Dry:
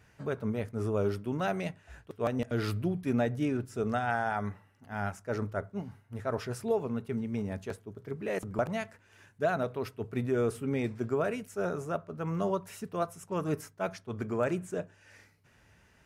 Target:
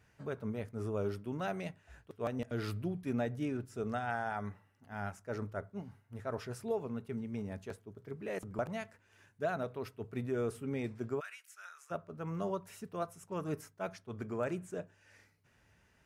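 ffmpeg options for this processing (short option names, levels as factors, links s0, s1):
-filter_complex "[0:a]asplit=3[s0][s1][s2];[s0]afade=t=out:st=11.19:d=0.02[s3];[s1]highpass=f=1400:w=0.5412,highpass=f=1400:w=1.3066,afade=t=in:st=11.19:d=0.02,afade=t=out:st=11.9:d=0.02[s4];[s2]afade=t=in:st=11.9:d=0.02[s5];[s3][s4][s5]amix=inputs=3:normalize=0,volume=0.501"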